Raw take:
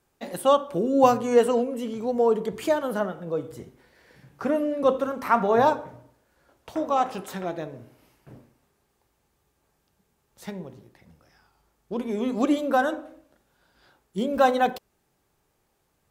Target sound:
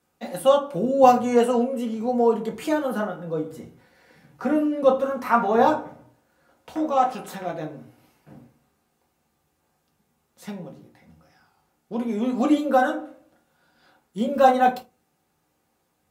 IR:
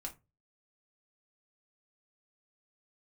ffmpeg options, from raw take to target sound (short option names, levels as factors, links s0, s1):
-filter_complex "[0:a]highpass=87[s0];[1:a]atrim=start_sample=2205[s1];[s0][s1]afir=irnorm=-1:irlink=0,volume=1.5"